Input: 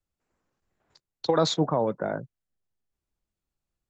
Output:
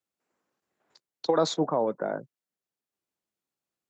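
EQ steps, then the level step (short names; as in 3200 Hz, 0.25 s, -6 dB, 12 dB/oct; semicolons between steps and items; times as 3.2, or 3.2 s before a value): HPF 230 Hz 12 dB/oct; dynamic EQ 2900 Hz, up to -6 dB, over -44 dBFS, Q 0.81; 0.0 dB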